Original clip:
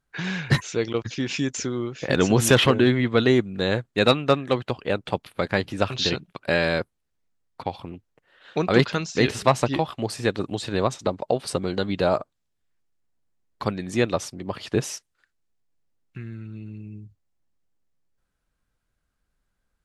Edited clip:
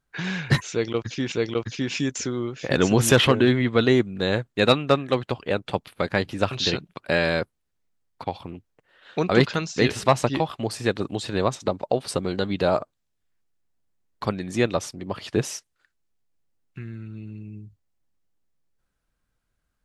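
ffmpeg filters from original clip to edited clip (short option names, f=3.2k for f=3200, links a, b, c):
-filter_complex "[0:a]asplit=2[a][b];[a]atrim=end=1.322[c];[b]atrim=start=0.708[d];[c][d]acrossfade=d=0.004:c1=hsin:c2=hsin"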